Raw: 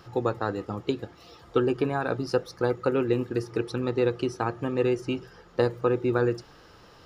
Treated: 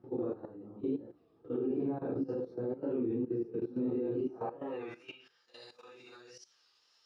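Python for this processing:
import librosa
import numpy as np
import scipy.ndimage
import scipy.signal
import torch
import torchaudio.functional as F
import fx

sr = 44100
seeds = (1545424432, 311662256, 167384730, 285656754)

y = fx.phase_scramble(x, sr, seeds[0], window_ms=200)
y = fx.dynamic_eq(y, sr, hz=1400.0, q=1.5, threshold_db=-47.0, ratio=4.0, max_db=-5)
y = fx.level_steps(y, sr, step_db=15)
y = fx.filter_sweep_bandpass(y, sr, from_hz=280.0, to_hz=5200.0, start_s=4.28, end_s=5.49, q=1.4)
y = fx.record_warp(y, sr, rpm=33.33, depth_cents=100.0)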